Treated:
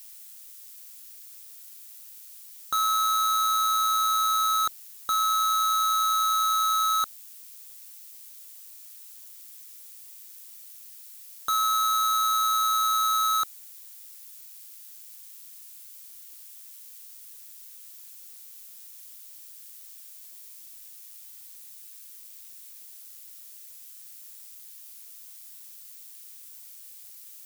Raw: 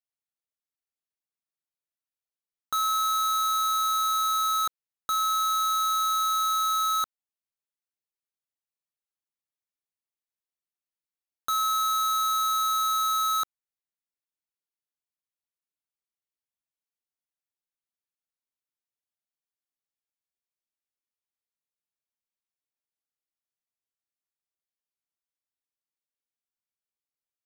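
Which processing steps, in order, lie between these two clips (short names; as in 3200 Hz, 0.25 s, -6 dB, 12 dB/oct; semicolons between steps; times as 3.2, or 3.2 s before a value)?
switching spikes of -40.5 dBFS; AM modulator 110 Hz, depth 15%; gain +2.5 dB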